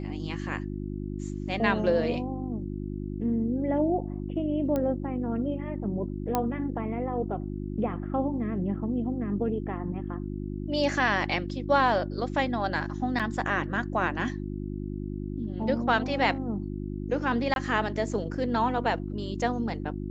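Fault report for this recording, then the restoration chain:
hum 50 Hz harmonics 7 -34 dBFS
4.76 s: pop -17 dBFS
6.35 s: pop -11 dBFS
13.19–13.20 s: dropout 6.3 ms
17.54–17.56 s: dropout 21 ms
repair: de-click; de-hum 50 Hz, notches 7; interpolate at 13.19 s, 6.3 ms; interpolate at 17.54 s, 21 ms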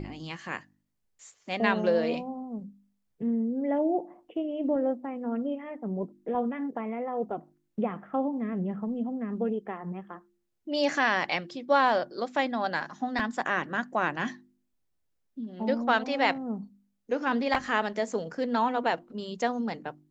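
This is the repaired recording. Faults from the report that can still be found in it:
nothing left

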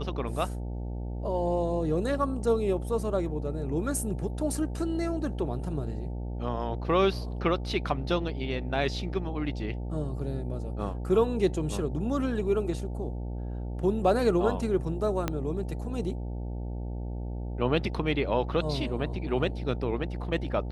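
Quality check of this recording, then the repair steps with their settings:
buzz 60 Hz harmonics 15 -34 dBFS
15.28 s: pop -13 dBFS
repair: de-click; de-hum 60 Hz, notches 15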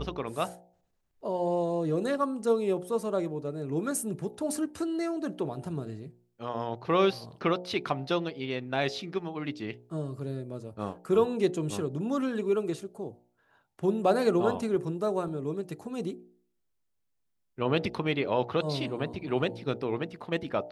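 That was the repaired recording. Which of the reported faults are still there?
15.28 s: pop

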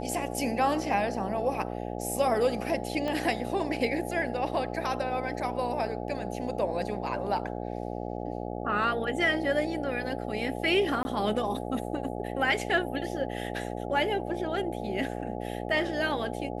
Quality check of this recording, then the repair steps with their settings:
buzz 60 Hz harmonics 14 -35 dBFS
3.08 s: pop -19 dBFS
11.03–11.05 s: dropout 20 ms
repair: de-click; de-hum 60 Hz, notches 14; interpolate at 11.03 s, 20 ms

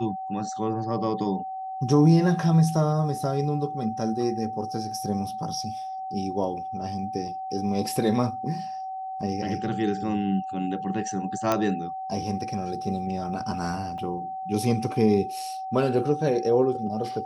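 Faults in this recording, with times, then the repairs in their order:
whine 760 Hz -31 dBFS
11.52 s: pop -9 dBFS
13.98 s: dropout 3 ms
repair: de-click; band-stop 760 Hz, Q 30; interpolate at 13.98 s, 3 ms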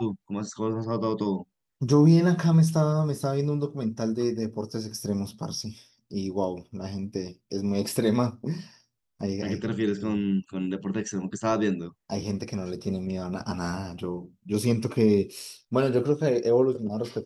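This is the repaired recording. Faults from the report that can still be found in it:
11.52 s: pop

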